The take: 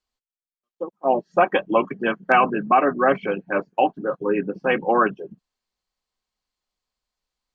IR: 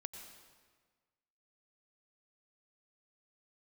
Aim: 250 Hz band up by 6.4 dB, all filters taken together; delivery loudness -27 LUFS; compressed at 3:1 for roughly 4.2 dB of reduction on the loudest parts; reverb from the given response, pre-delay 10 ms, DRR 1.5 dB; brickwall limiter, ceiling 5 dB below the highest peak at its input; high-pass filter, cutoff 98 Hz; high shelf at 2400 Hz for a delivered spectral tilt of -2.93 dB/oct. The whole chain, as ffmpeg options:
-filter_complex "[0:a]highpass=98,equalizer=f=250:t=o:g=8.5,highshelf=f=2.4k:g=-8,acompressor=threshold=-17dB:ratio=3,alimiter=limit=-13dB:level=0:latency=1,asplit=2[a][b];[1:a]atrim=start_sample=2205,adelay=10[c];[b][c]afir=irnorm=-1:irlink=0,volume=1.5dB[d];[a][d]amix=inputs=2:normalize=0,volume=-4.5dB"

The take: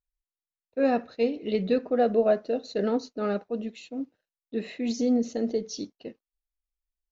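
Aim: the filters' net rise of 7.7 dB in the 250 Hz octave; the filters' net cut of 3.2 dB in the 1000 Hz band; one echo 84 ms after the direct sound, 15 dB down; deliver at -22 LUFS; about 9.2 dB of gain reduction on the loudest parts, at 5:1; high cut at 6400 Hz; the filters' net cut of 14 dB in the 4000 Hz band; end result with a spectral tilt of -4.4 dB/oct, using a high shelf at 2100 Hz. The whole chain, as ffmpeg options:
-af "lowpass=6.4k,equalizer=f=250:t=o:g=8.5,equalizer=f=1k:t=o:g=-4.5,highshelf=f=2.1k:g=-9,equalizer=f=4k:t=o:g=-8,acompressor=threshold=-22dB:ratio=5,aecho=1:1:84:0.178,volume=6dB"

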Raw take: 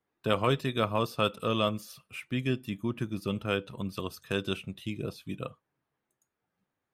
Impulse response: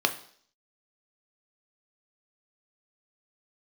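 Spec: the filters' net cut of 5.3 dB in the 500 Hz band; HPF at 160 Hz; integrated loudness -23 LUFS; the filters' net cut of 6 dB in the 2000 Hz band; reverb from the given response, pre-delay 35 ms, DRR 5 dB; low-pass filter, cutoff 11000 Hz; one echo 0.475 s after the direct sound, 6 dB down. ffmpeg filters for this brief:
-filter_complex "[0:a]highpass=160,lowpass=11k,equalizer=f=500:t=o:g=-6,equalizer=f=2k:t=o:g=-8.5,aecho=1:1:475:0.501,asplit=2[a][b];[1:a]atrim=start_sample=2205,adelay=35[c];[b][c]afir=irnorm=-1:irlink=0,volume=-16.5dB[d];[a][d]amix=inputs=2:normalize=0,volume=11dB"

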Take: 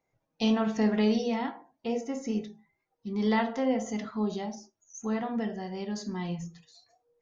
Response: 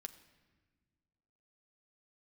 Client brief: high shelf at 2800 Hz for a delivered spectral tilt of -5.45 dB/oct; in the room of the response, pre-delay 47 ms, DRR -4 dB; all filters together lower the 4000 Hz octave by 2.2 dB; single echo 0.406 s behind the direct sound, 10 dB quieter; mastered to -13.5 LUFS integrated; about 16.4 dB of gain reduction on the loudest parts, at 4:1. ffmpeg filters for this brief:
-filter_complex "[0:a]highshelf=f=2.8k:g=4,equalizer=f=4k:t=o:g=-6.5,acompressor=threshold=-42dB:ratio=4,aecho=1:1:406:0.316,asplit=2[a][b];[1:a]atrim=start_sample=2205,adelay=47[c];[b][c]afir=irnorm=-1:irlink=0,volume=9dB[d];[a][d]amix=inputs=2:normalize=0,volume=24.5dB"

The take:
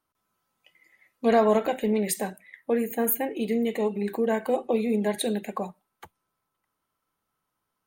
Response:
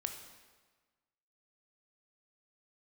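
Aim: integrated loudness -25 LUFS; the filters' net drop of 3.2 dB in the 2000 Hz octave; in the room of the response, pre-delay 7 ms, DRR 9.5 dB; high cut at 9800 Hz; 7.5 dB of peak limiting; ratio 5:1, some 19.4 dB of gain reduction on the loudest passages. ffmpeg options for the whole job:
-filter_complex "[0:a]lowpass=9.8k,equalizer=f=2k:t=o:g=-4,acompressor=threshold=-39dB:ratio=5,alimiter=level_in=9dB:limit=-24dB:level=0:latency=1,volume=-9dB,asplit=2[a][b];[1:a]atrim=start_sample=2205,adelay=7[c];[b][c]afir=irnorm=-1:irlink=0,volume=-9.5dB[d];[a][d]amix=inputs=2:normalize=0,volume=18.5dB"

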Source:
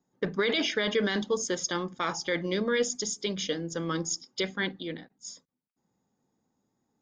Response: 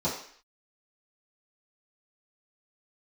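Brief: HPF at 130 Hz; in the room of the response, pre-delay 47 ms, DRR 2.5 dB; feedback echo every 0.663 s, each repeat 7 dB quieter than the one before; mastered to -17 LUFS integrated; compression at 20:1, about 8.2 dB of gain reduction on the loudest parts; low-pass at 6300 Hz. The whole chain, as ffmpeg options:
-filter_complex "[0:a]highpass=130,lowpass=6.3k,acompressor=threshold=-30dB:ratio=20,aecho=1:1:663|1326|1989|2652|3315:0.447|0.201|0.0905|0.0407|0.0183,asplit=2[a][b];[1:a]atrim=start_sample=2205,adelay=47[c];[b][c]afir=irnorm=-1:irlink=0,volume=-12dB[d];[a][d]amix=inputs=2:normalize=0,volume=14.5dB"

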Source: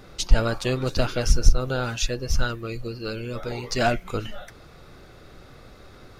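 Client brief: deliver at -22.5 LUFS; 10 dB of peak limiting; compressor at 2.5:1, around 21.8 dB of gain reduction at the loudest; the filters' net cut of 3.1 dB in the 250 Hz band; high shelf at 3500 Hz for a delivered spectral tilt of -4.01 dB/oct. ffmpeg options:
-af "equalizer=f=250:t=o:g=-4,highshelf=f=3.5k:g=6,acompressor=threshold=-41dB:ratio=2.5,volume=21dB,alimiter=limit=-10.5dB:level=0:latency=1"

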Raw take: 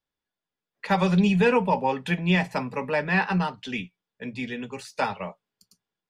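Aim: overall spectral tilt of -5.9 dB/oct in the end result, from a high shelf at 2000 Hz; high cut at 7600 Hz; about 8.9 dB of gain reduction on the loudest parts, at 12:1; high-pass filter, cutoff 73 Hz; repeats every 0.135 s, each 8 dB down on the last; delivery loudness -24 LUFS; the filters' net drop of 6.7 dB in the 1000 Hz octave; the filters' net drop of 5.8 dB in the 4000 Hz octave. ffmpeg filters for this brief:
-af "highpass=73,lowpass=7.6k,equalizer=f=1k:t=o:g=-7.5,highshelf=f=2k:g=-4,equalizer=f=4k:t=o:g=-3,acompressor=threshold=-26dB:ratio=12,aecho=1:1:135|270|405|540|675:0.398|0.159|0.0637|0.0255|0.0102,volume=8dB"

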